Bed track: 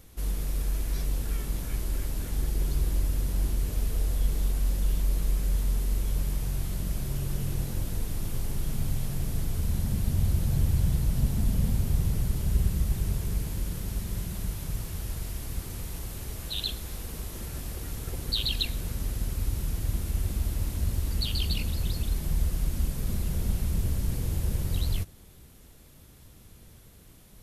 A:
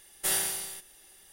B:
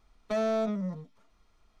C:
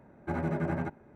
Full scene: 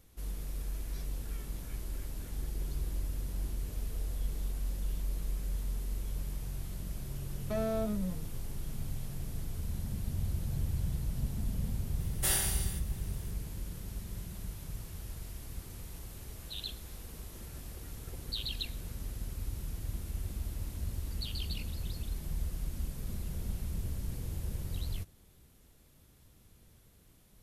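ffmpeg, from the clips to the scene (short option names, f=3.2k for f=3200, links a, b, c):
-filter_complex "[0:a]volume=-9dB[a];[2:a]lowshelf=f=470:g=6,atrim=end=1.8,asetpts=PTS-STARTPTS,volume=-8dB,afade=t=in:d=0.004:c=hsin,afade=t=out:st=1.796:d=0.004:c=hsin,adelay=7200[b];[1:a]atrim=end=1.32,asetpts=PTS-STARTPTS,volume=-2.5dB,afade=t=in:d=0.004:c=hsin,afade=t=out:st=1.316:d=0.004:c=hsin,adelay=11990[c];[a][b][c]amix=inputs=3:normalize=0"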